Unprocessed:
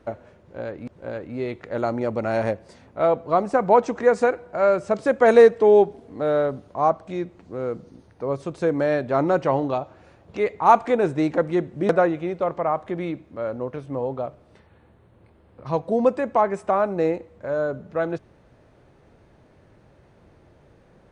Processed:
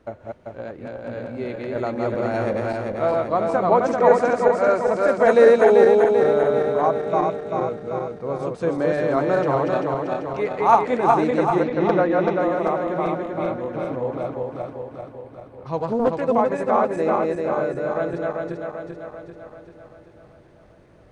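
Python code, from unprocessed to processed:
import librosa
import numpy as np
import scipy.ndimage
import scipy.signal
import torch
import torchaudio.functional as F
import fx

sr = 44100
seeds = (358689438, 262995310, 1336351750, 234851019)

y = fx.reverse_delay_fb(x, sr, ms=195, feedback_pct=75, wet_db=-1.0)
y = fx.lowpass(y, sr, hz=5500.0, slope=24, at=(11.63, 12.4))
y = fx.doppler_dist(y, sr, depth_ms=0.37, at=(15.77, 16.22))
y = F.gain(torch.from_numpy(y), -2.5).numpy()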